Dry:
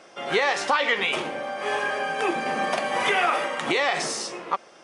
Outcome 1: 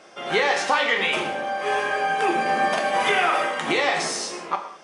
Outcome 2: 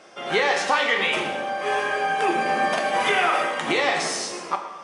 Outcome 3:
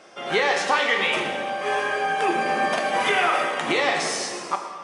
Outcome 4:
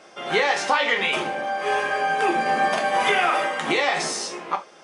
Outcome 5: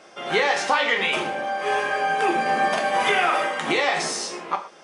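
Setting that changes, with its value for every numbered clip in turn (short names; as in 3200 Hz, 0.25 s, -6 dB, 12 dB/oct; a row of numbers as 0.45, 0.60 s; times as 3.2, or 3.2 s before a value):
non-linear reverb, gate: 0.23, 0.35, 0.52, 0.1, 0.15 s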